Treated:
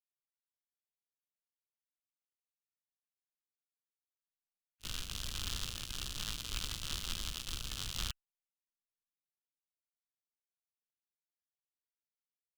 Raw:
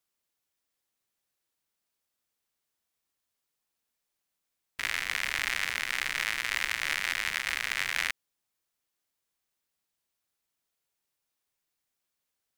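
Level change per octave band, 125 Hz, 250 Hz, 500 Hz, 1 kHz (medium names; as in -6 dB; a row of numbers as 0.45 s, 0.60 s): +9.0 dB, +1.5 dB, -8.0 dB, -12.5 dB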